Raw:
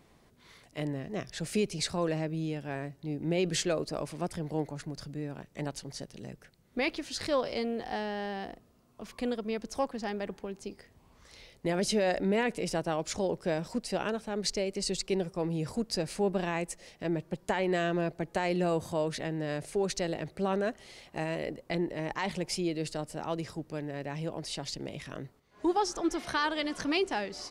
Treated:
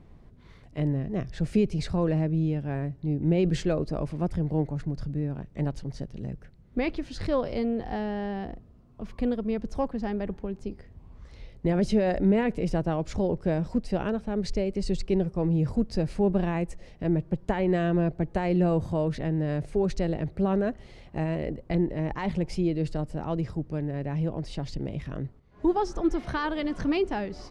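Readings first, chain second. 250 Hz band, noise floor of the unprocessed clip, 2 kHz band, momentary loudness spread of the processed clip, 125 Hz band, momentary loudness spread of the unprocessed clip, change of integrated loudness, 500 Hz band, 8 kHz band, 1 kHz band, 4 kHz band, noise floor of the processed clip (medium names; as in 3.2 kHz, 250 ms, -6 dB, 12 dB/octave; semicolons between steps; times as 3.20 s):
+7.0 dB, -63 dBFS, -2.5 dB, 10 LU, +10.0 dB, 11 LU, +4.5 dB, +3.0 dB, under -10 dB, +0.5 dB, -6.5 dB, -52 dBFS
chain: RIAA curve playback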